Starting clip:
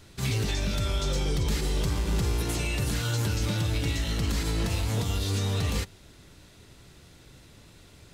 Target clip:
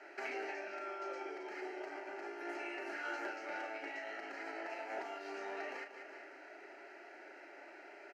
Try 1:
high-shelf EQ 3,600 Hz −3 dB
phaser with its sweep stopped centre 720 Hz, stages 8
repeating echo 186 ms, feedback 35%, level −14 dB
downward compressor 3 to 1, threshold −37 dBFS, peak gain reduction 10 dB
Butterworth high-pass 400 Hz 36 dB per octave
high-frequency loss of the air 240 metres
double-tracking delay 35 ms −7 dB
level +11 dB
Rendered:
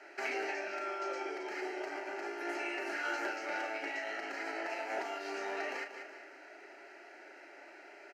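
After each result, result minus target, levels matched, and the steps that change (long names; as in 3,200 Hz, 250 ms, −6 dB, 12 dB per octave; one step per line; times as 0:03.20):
downward compressor: peak gain reduction −4.5 dB; 8,000 Hz band +3.0 dB
change: downward compressor 3 to 1, threshold −44 dBFS, peak gain reduction 14.5 dB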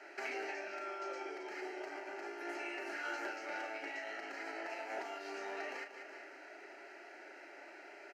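8,000 Hz band +4.0 dB
change: high-shelf EQ 3,600 Hz −9.5 dB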